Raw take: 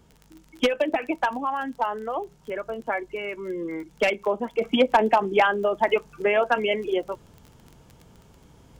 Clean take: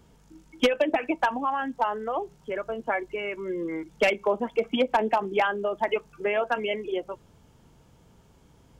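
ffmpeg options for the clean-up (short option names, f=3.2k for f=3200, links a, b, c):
-af "adeclick=t=4,asetnsamples=n=441:p=0,asendcmd='4.61 volume volume -4.5dB',volume=0dB"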